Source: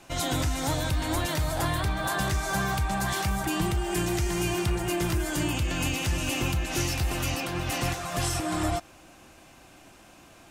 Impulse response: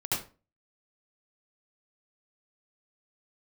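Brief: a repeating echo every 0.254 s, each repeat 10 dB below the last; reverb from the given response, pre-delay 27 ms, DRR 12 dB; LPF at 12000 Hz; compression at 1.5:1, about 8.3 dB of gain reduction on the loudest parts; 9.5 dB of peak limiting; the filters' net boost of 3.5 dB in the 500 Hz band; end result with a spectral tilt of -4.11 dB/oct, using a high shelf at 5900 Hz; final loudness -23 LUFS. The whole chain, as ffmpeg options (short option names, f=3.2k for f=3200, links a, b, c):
-filter_complex "[0:a]lowpass=12k,equalizer=f=500:t=o:g=5.5,highshelf=f=5.9k:g=3.5,acompressor=threshold=-46dB:ratio=1.5,alimiter=level_in=8.5dB:limit=-24dB:level=0:latency=1,volume=-8.5dB,aecho=1:1:254|508|762|1016:0.316|0.101|0.0324|0.0104,asplit=2[a][b];[1:a]atrim=start_sample=2205,adelay=27[c];[b][c]afir=irnorm=-1:irlink=0,volume=-19dB[d];[a][d]amix=inputs=2:normalize=0,volume=17.5dB"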